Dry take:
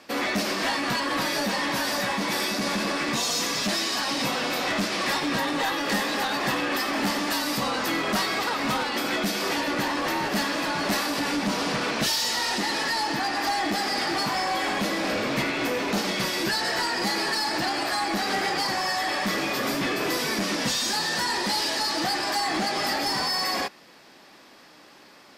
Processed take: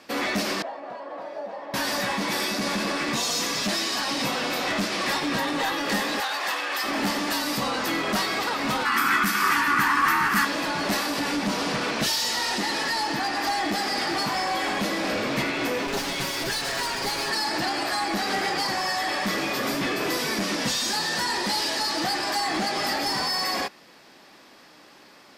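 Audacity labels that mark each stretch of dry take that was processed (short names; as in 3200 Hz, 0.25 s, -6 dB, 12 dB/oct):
0.620000	1.740000	band-pass 640 Hz, Q 3.4
6.200000	6.840000	HPF 680 Hz
8.850000	10.450000	EQ curve 240 Hz 0 dB, 410 Hz -7 dB, 580 Hz -17 dB, 1200 Hz +14 dB, 3800 Hz -3 dB, 13000 Hz +7 dB
15.870000	17.300000	minimum comb delay 7.3 ms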